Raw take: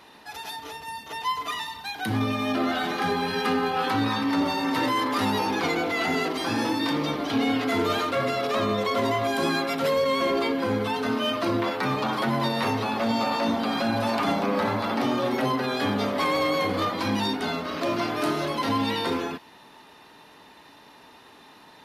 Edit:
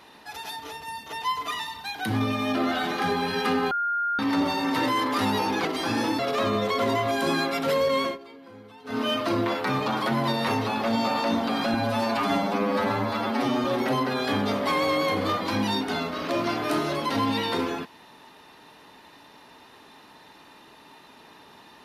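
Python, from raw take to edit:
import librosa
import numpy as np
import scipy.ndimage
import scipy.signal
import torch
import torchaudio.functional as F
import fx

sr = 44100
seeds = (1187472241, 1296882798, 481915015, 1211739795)

y = fx.edit(x, sr, fx.bleep(start_s=3.71, length_s=0.48, hz=1410.0, db=-23.0),
    fx.cut(start_s=5.65, length_s=0.61),
    fx.cut(start_s=6.8, length_s=1.55),
    fx.fade_down_up(start_s=10.17, length_s=1.0, db=-21.0, fade_s=0.17),
    fx.stretch_span(start_s=13.9, length_s=1.27, factor=1.5), tone=tone)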